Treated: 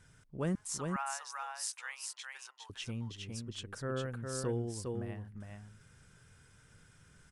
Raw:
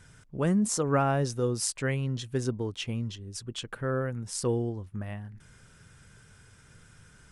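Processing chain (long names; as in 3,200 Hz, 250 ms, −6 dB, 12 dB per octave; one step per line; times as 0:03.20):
0:00.55–0:02.70: elliptic high-pass filter 850 Hz, stop band 80 dB
single-tap delay 409 ms −4 dB
level −7.5 dB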